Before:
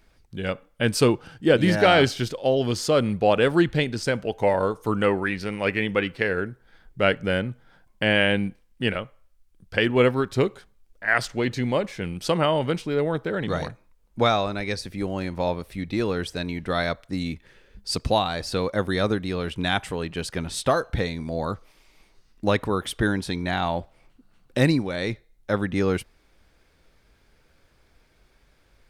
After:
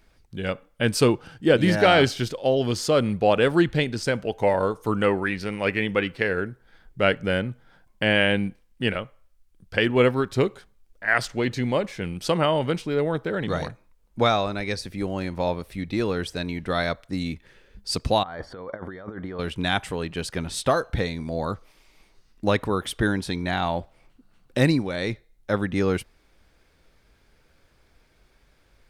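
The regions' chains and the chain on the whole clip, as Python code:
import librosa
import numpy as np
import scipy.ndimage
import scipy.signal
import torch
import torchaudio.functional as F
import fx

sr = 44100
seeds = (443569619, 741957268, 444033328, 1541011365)

y = fx.chain(x, sr, fx.low_shelf(hz=350.0, db=-8.0),
    fx.over_compress(threshold_db=-35.0, ratio=-1.0),
    fx.savgol(points=41), at=(18.23, 19.39))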